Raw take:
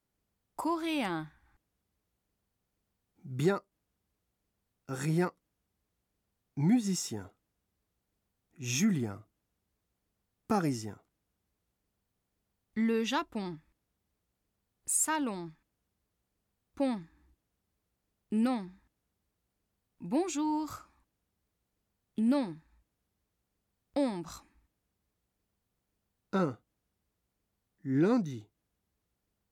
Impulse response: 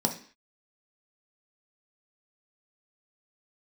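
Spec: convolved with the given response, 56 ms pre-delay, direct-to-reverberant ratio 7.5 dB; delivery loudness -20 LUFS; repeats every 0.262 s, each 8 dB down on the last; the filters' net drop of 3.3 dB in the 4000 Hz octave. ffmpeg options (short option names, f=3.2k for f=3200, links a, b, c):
-filter_complex "[0:a]equalizer=f=4k:t=o:g=-4.5,aecho=1:1:262|524|786|1048|1310:0.398|0.159|0.0637|0.0255|0.0102,asplit=2[a][b];[1:a]atrim=start_sample=2205,adelay=56[c];[b][c]afir=irnorm=-1:irlink=0,volume=-16dB[d];[a][d]amix=inputs=2:normalize=0,volume=10.5dB"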